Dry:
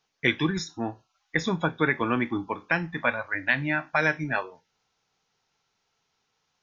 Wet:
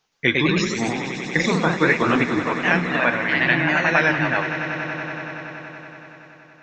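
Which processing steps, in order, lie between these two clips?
echoes that change speed 0.118 s, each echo +1 st, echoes 3; swelling echo 94 ms, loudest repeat 5, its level -15.5 dB; gain +4 dB

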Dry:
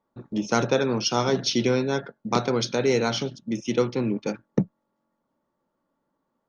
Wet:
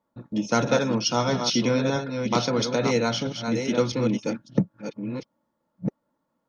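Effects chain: reverse delay 0.654 s, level -6 dB; notch comb 390 Hz; gain +1 dB

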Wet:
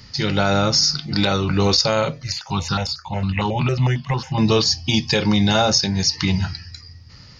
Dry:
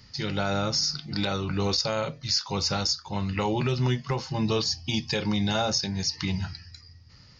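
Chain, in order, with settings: 2.23–4.38 step phaser 11 Hz 930–2200 Hz; gain +9 dB

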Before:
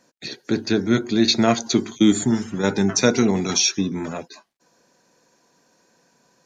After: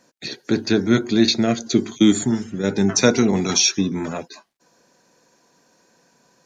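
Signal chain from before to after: 1.29–3.33 rotary speaker horn 1 Hz; gain +2 dB

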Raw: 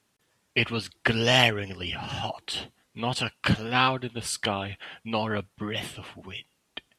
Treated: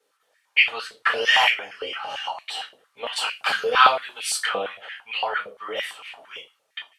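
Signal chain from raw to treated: 3.16–4.4 high shelf 3700 Hz +8.5 dB; reverb RT60 0.30 s, pre-delay 4 ms, DRR -3.5 dB; stepped high-pass 8.8 Hz 490–2300 Hz; gain -9 dB

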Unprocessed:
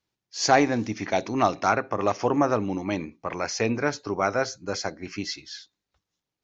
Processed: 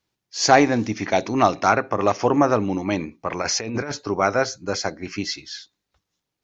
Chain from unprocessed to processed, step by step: 3.42–3.92 negative-ratio compressor -31 dBFS, ratio -1; gain +4.5 dB

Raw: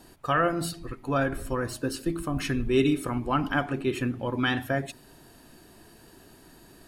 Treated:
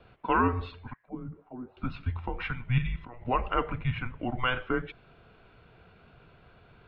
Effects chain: 0.93–1.77 auto-wah 390–2300 Hz, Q 6.9, down, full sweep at -22 dBFS; mistuned SSB -250 Hz 290–3400 Hz; 2.78–3.25 level quantiser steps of 15 dB

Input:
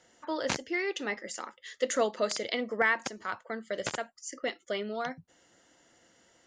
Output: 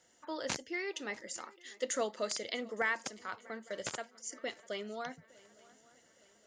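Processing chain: high shelf 6700 Hz +10.5 dB; swung echo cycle 0.862 s, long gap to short 3:1, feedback 48%, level -23.5 dB; gain -7 dB

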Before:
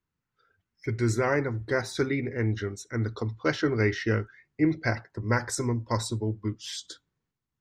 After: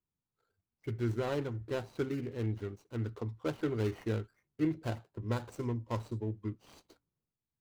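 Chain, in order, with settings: median filter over 25 samples; gain -7 dB

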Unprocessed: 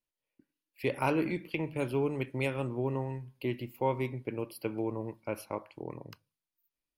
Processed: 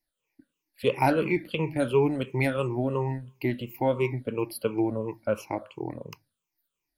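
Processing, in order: moving spectral ripple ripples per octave 0.75, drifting -2.9 Hz, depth 16 dB; gain +3.5 dB

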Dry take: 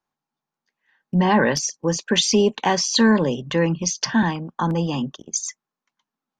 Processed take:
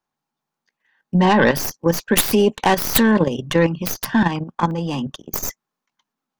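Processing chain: tracing distortion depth 0.26 ms; level quantiser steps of 10 dB; gain +6.5 dB

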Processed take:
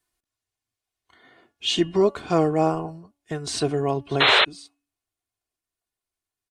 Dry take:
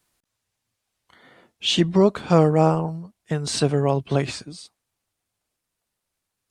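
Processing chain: comb 2.8 ms, depth 51%; de-hum 285.4 Hz, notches 11; painted sound noise, 4.2–4.45, 380–4200 Hz -13 dBFS; spectral noise reduction 6 dB; gain -3.5 dB

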